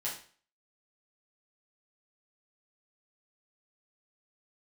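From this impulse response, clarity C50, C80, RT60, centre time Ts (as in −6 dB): 6.0 dB, 11.0 dB, 0.45 s, 30 ms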